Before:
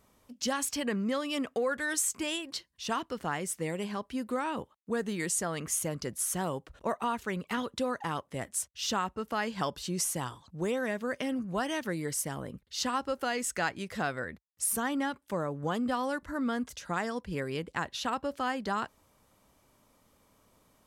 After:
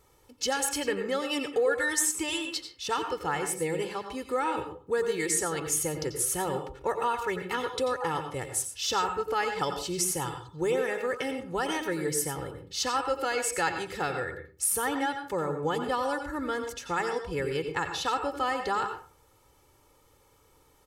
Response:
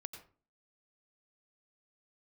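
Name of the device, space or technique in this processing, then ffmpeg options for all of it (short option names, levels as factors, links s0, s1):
microphone above a desk: -filter_complex "[0:a]aecho=1:1:2.3:0.78[s0];[1:a]atrim=start_sample=2205[s1];[s0][s1]afir=irnorm=-1:irlink=0,volume=1.88"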